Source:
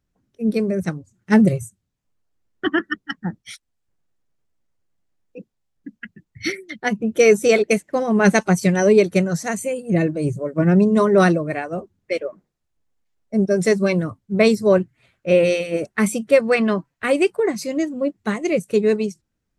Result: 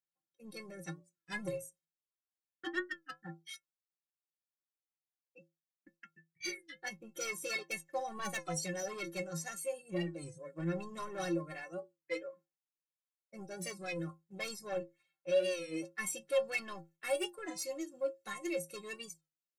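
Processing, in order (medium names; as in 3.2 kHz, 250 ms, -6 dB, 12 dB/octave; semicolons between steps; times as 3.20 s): high-pass 62 Hz; RIAA curve recording; gate -47 dBFS, range -9 dB; treble shelf 6.5 kHz -11.5 dB, from 16.44 s -3.5 dB; saturation -17 dBFS, distortion -10 dB; inharmonic resonator 160 Hz, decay 0.27 s, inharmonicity 0.03; warped record 33 1/3 rpm, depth 100 cents; trim -3.5 dB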